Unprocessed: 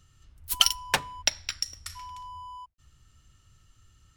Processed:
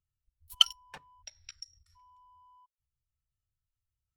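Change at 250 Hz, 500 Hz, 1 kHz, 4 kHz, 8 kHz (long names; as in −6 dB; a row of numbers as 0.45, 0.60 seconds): below −20 dB, −22.0 dB, −13.5 dB, −2.0 dB, −13.0 dB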